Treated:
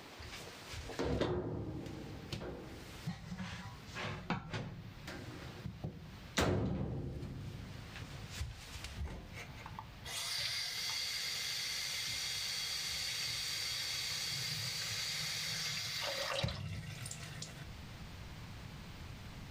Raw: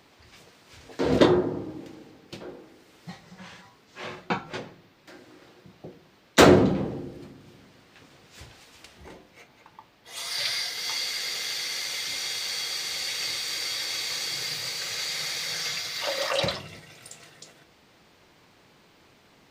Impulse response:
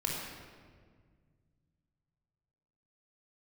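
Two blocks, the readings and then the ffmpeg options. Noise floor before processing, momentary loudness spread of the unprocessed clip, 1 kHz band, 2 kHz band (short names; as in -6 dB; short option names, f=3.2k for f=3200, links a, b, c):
-59 dBFS, 24 LU, -14.5 dB, -10.0 dB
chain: -af "asubboost=boost=9:cutoff=120,acompressor=threshold=-49dB:ratio=2.5,volume=5dB"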